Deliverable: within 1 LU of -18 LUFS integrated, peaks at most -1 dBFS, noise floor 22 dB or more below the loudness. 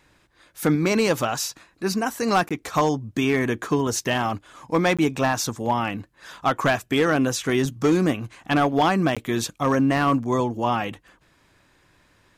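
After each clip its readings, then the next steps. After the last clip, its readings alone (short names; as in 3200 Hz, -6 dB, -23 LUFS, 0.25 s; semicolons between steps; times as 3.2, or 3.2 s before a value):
clipped 0.5%; flat tops at -12.5 dBFS; dropouts 3; longest dropout 16 ms; loudness -23.0 LUFS; peak -12.5 dBFS; loudness target -18.0 LUFS
-> clip repair -12.5 dBFS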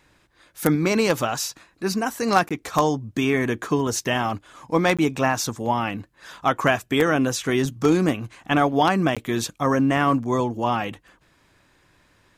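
clipped 0.0%; dropouts 3; longest dropout 16 ms
-> interpolate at 2.49/4.97/9.15, 16 ms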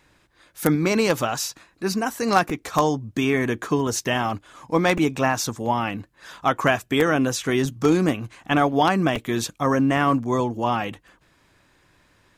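dropouts 0; loudness -22.5 LUFS; peak -3.5 dBFS; loudness target -18.0 LUFS
-> gain +4.5 dB; limiter -1 dBFS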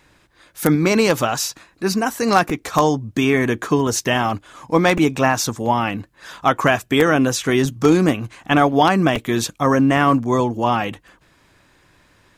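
loudness -18.0 LUFS; peak -1.0 dBFS; noise floor -57 dBFS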